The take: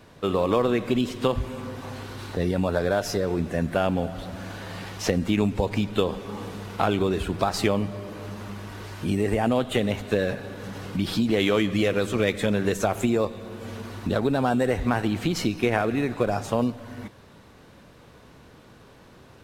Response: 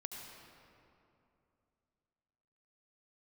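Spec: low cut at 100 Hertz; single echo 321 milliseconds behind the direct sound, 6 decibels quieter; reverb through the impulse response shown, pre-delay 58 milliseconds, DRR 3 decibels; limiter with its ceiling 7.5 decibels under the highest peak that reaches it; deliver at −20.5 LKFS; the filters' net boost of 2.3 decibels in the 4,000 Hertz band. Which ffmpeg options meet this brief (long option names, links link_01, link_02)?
-filter_complex "[0:a]highpass=100,equalizer=frequency=4000:width_type=o:gain=3,alimiter=limit=-13.5dB:level=0:latency=1,aecho=1:1:321:0.501,asplit=2[link_01][link_02];[1:a]atrim=start_sample=2205,adelay=58[link_03];[link_02][link_03]afir=irnorm=-1:irlink=0,volume=-1dB[link_04];[link_01][link_04]amix=inputs=2:normalize=0,volume=3.5dB"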